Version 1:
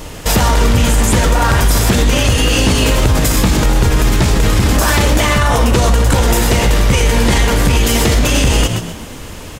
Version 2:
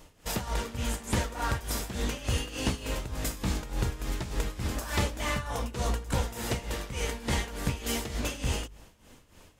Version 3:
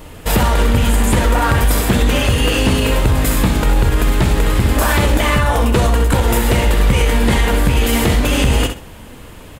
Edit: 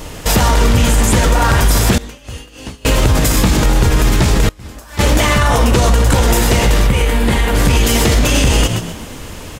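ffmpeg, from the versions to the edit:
-filter_complex "[1:a]asplit=2[a][b];[0:a]asplit=4[c][d][e][f];[c]atrim=end=1.982[g];[a]atrim=start=1.978:end=2.852[h];[d]atrim=start=2.848:end=4.492[i];[b]atrim=start=4.488:end=4.992[j];[e]atrim=start=4.988:end=6.872[k];[2:a]atrim=start=6.868:end=7.552[l];[f]atrim=start=7.548[m];[g][h]acrossfade=d=0.004:c1=hsin:c2=hsin[n];[n][i]acrossfade=d=0.004:c1=hsin:c2=hsin[o];[o][j]acrossfade=d=0.004:c1=hsin:c2=hsin[p];[p][k]acrossfade=d=0.004:c1=hsin:c2=hsin[q];[q][l]acrossfade=d=0.004:c1=hsin:c2=hsin[r];[r][m]acrossfade=d=0.004:c1=hsin:c2=hsin"

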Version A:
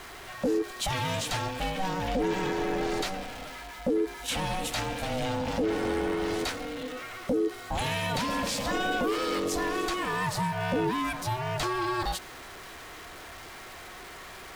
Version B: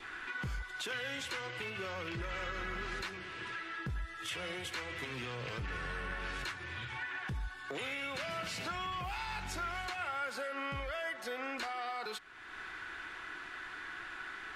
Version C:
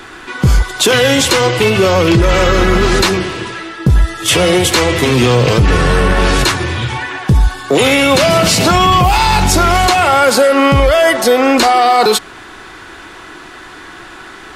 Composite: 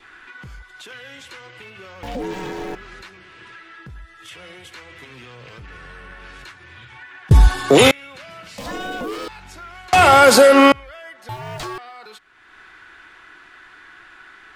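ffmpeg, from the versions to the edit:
-filter_complex "[0:a]asplit=3[a][b][c];[2:a]asplit=2[d][e];[1:a]asplit=6[f][g][h][i][j][k];[f]atrim=end=2.032[l];[a]atrim=start=2.028:end=2.752[m];[g]atrim=start=2.748:end=7.312[n];[d]atrim=start=7.308:end=7.912[o];[h]atrim=start=7.908:end=8.582[p];[b]atrim=start=8.578:end=9.282[q];[i]atrim=start=9.278:end=9.932[r];[e]atrim=start=9.928:end=10.722[s];[j]atrim=start=10.718:end=11.292[t];[c]atrim=start=11.288:end=11.782[u];[k]atrim=start=11.778[v];[l][m]acrossfade=d=0.004:c1=hsin:c2=hsin[w];[w][n]acrossfade=d=0.004:c1=hsin:c2=hsin[x];[x][o]acrossfade=d=0.004:c1=hsin:c2=hsin[y];[y][p]acrossfade=d=0.004:c1=hsin:c2=hsin[z];[z][q]acrossfade=d=0.004:c1=hsin:c2=hsin[aa];[aa][r]acrossfade=d=0.004:c1=hsin:c2=hsin[ab];[ab][s]acrossfade=d=0.004:c1=hsin:c2=hsin[ac];[ac][t]acrossfade=d=0.004:c1=hsin:c2=hsin[ad];[ad][u]acrossfade=d=0.004:c1=hsin:c2=hsin[ae];[ae][v]acrossfade=d=0.004:c1=hsin:c2=hsin"

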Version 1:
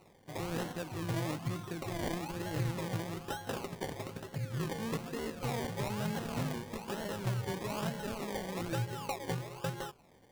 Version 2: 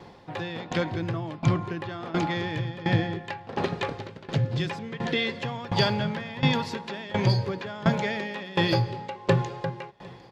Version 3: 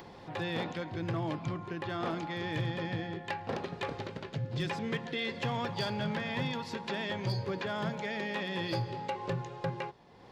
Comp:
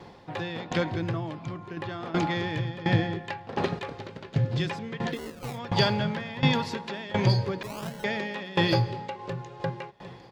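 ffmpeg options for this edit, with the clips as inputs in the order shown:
-filter_complex "[2:a]asplit=3[a][b][c];[0:a]asplit=2[d][e];[1:a]asplit=6[f][g][h][i][j][k];[f]atrim=end=1.362[l];[a]atrim=start=1.358:end=1.772[m];[g]atrim=start=1.768:end=3.792[n];[b]atrim=start=3.788:end=4.362[o];[h]atrim=start=4.358:end=5.18[p];[d]atrim=start=5.08:end=5.6[q];[i]atrim=start=5.5:end=7.632[r];[e]atrim=start=7.628:end=8.042[s];[j]atrim=start=8.038:end=9.192[t];[c]atrim=start=9.188:end=9.602[u];[k]atrim=start=9.598[v];[l][m]acrossfade=d=0.004:c1=hsin:c2=hsin[w];[w][n]acrossfade=d=0.004:c1=hsin:c2=hsin[x];[x][o]acrossfade=d=0.004:c1=hsin:c2=hsin[y];[y][p]acrossfade=d=0.004:c1=hsin:c2=hsin[z];[z][q]acrossfade=d=0.1:c1=tri:c2=tri[aa];[aa][r]acrossfade=d=0.1:c1=tri:c2=tri[ab];[ab][s]acrossfade=d=0.004:c1=hsin:c2=hsin[ac];[ac][t]acrossfade=d=0.004:c1=hsin:c2=hsin[ad];[ad][u]acrossfade=d=0.004:c1=hsin:c2=hsin[ae];[ae][v]acrossfade=d=0.004:c1=hsin:c2=hsin"

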